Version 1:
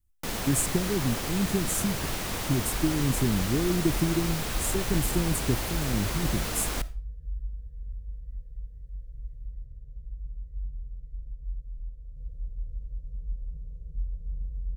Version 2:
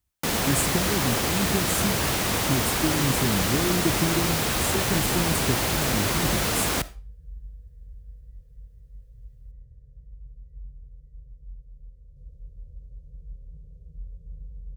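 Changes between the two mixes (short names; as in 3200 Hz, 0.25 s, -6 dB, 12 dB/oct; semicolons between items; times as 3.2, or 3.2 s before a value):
first sound +8.0 dB; master: add HPF 61 Hz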